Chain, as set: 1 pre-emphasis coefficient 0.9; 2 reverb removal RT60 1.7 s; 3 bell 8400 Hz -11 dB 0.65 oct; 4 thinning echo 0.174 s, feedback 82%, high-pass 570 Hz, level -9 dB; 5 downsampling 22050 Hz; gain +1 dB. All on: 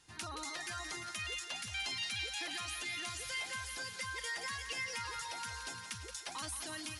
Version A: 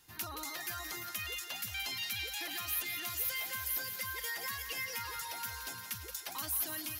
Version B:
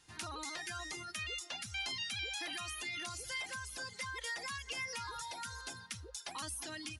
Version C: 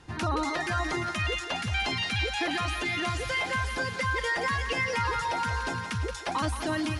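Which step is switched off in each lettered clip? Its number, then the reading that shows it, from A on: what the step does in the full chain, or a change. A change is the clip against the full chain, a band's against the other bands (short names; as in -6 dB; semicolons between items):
5, 8 kHz band +2.5 dB; 4, loudness change -1.0 LU; 1, 8 kHz band -16.5 dB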